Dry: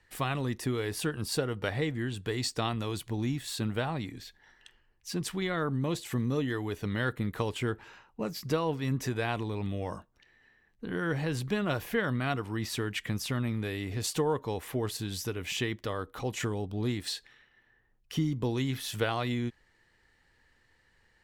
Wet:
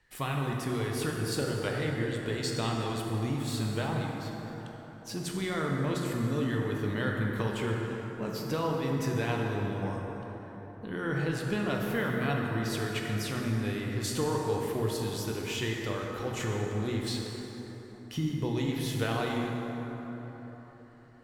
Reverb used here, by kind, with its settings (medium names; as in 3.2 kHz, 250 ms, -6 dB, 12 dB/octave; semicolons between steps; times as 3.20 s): plate-style reverb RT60 4.4 s, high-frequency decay 0.45×, DRR -1 dB; trim -3 dB